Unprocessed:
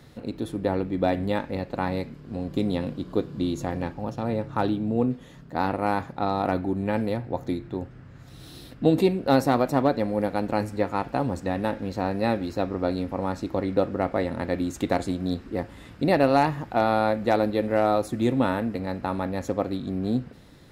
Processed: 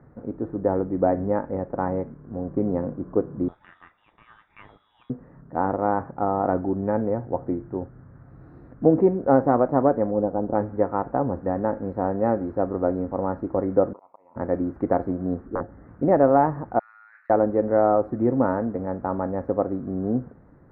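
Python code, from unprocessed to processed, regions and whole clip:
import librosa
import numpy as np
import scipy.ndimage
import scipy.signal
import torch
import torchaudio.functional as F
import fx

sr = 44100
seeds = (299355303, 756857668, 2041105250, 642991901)

y = fx.chain(x, sr, fx.peak_eq(hz=310.0, db=13.0, octaves=0.3),
    fx.freq_invert(carrier_hz=3600), at=(3.48, 5.1))
y = fx.chain(y, sr, fx.cvsd(bps=64000),
    fx.lowpass(hz=1000.0, slope=12),
    fx.doppler_dist(depth_ms=0.13), at=(10.11, 10.55))
y = fx.chain(y, sr, fx.double_bandpass(hz=1600.0, octaves=1.4),
    fx.auto_swell(attack_ms=270.0), at=(13.93, 14.36))
y = fx.chain(y, sr, fx.peak_eq(hz=1000.0, db=-10.5, octaves=0.21),
    fx.overflow_wrap(gain_db=17.0),
    fx.savgol(points=41), at=(15.46, 15.88))
y = fx.chain(y, sr, fx.steep_highpass(hz=1600.0, slope=36),
    fx.over_compress(threshold_db=-47.0, ratio=-1.0),
    fx.doubler(ms=29.0, db=-10.5), at=(16.79, 17.3))
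y = scipy.signal.sosfilt(scipy.signal.cheby2(4, 40, 3000.0, 'lowpass', fs=sr, output='sos'), y)
y = fx.dynamic_eq(y, sr, hz=510.0, q=0.83, threshold_db=-35.0, ratio=4.0, max_db=5)
y = y * 10.0 ** (-1.0 / 20.0)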